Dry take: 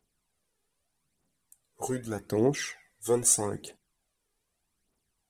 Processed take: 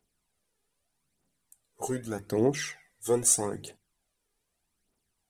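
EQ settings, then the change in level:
mains-hum notches 50/100/150 Hz
notch filter 1,100 Hz, Q 24
0.0 dB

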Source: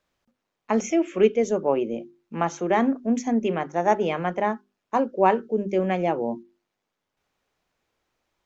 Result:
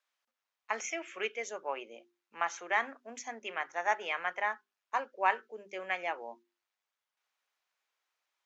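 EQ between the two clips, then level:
high-pass filter 1,000 Hz 12 dB per octave
dynamic equaliser 1,900 Hz, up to +7 dB, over −45 dBFS, Q 1.2
−5.5 dB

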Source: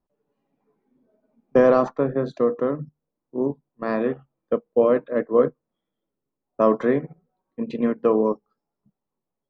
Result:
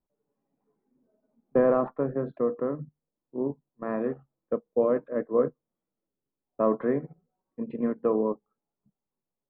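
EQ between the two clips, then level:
low-pass filter 2,200 Hz 12 dB per octave
high-frequency loss of the air 370 metres
−5.0 dB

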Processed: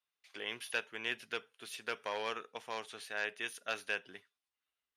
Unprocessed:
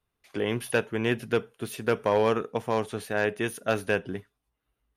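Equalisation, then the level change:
resonant band-pass 3,800 Hz, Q 0.72
−2.5 dB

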